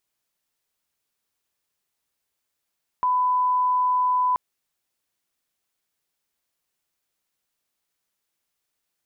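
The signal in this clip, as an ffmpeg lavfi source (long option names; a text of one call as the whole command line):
ffmpeg -f lavfi -i "sine=frequency=1000:duration=1.33:sample_rate=44100,volume=0.06dB" out.wav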